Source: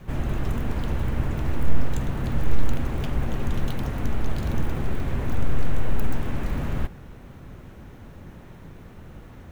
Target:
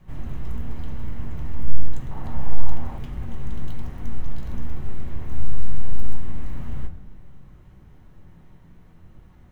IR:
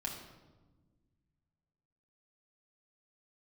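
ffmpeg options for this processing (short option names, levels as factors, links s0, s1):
-filter_complex "[0:a]asplit=2[s0][s1];[1:a]atrim=start_sample=2205,asetrate=52920,aresample=44100,lowshelf=f=140:g=8.5[s2];[s1][s2]afir=irnorm=-1:irlink=0,volume=0.75[s3];[s0][s3]amix=inputs=2:normalize=0,flanger=delay=8.4:depth=9.4:regen=69:speed=0.98:shape=triangular,asettb=1/sr,asplit=3[s4][s5][s6];[s4]atrim=end=2.114[s7];[s5]atrim=start=2.11:end=2.98,asetpts=PTS-STARTPTS,afade=t=in:d=0.004:c=qsin,afade=t=out:st=0.866:d=0.004:c=qsin,equalizer=f=830:w=1.4:g=11.5[s8];[s6]atrim=start=2.976[s9];[s7][s8]acrossfade=d=0.004:c1=hsin:c2=qsin[s10];[s10][s9]acrossfade=d=0.004:c1=qsin:c2=hsin,volume=0.335"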